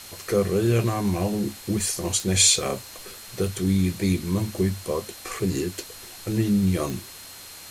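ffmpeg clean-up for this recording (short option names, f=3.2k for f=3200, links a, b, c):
-af "adeclick=t=4,bandreject=f=4.2k:w=30,afftdn=nr=27:nf=-42"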